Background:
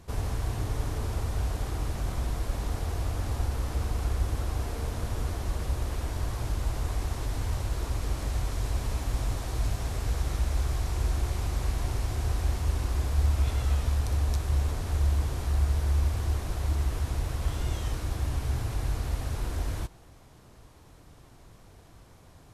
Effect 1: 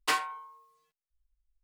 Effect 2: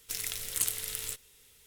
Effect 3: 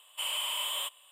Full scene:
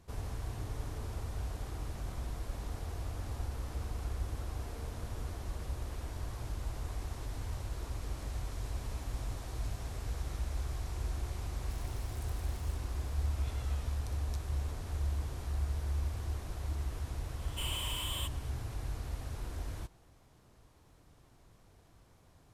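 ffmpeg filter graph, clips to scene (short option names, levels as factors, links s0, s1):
-filter_complex "[0:a]volume=0.355[s0];[2:a]acompressor=threshold=0.00447:ratio=2.5:attack=6.7:release=52:knee=1:detection=rms[s1];[3:a]asoftclip=type=hard:threshold=0.0335[s2];[s1]atrim=end=1.66,asetpts=PTS-STARTPTS,volume=0.2,afade=t=in:d=0.004:c=hsin,afade=t=out:st=1.656:d=0.004:c=hsin,adelay=11610[s3];[s2]atrim=end=1.11,asetpts=PTS-STARTPTS,volume=0.562,afade=t=in:d=0.004:c=hsin,afade=t=out:st=1.106:d=0.004:c=hsin,adelay=17390[s4];[s0][s3][s4]amix=inputs=3:normalize=0"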